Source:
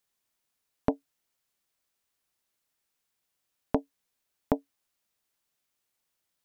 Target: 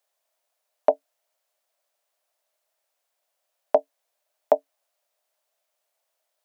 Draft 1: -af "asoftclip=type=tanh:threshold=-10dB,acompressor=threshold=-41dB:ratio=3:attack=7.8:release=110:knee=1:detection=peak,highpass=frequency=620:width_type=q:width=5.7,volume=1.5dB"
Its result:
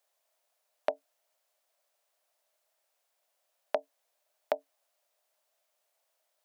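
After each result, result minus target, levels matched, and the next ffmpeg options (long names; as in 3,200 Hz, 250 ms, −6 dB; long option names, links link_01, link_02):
downward compressor: peak gain reduction +15 dB; soft clipping: distortion +14 dB
-af "asoftclip=type=tanh:threshold=-10dB,highpass=frequency=620:width_type=q:width=5.7,volume=1.5dB"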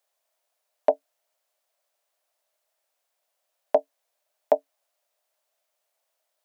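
soft clipping: distortion +14 dB
-af "asoftclip=type=tanh:threshold=-1.5dB,highpass=frequency=620:width_type=q:width=5.7,volume=1.5dB"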